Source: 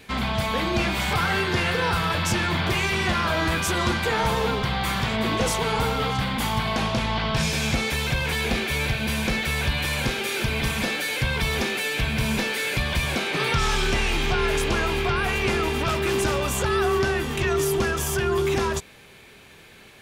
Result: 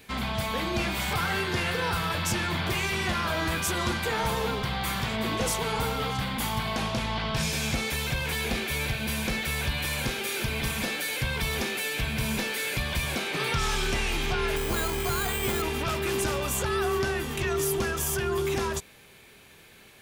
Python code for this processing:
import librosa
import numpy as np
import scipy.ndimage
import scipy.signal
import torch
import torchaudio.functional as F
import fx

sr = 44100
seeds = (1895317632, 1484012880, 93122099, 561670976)

y = fx.resample_bad(x, sr, factor=8, down='filtered', up='hold', at=(14.56, 15.62))
y = fx.high_shelf(y, sr, hz=9300.0, db=9.5)
y = F.gain(torch.from_numpy(y), -5.0).numpy()